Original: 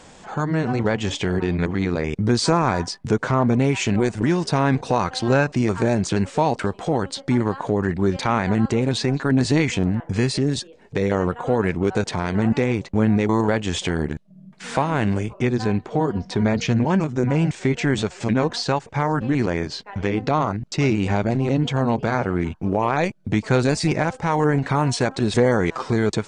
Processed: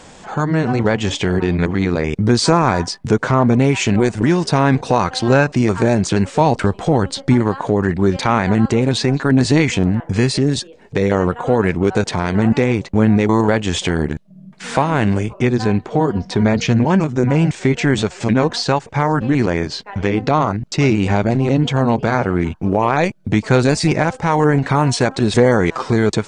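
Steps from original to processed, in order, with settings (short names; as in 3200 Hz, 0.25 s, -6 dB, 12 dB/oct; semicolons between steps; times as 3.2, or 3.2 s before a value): 6.4–7.34 low shelf 140 Hz +8 dB; gain +5 dB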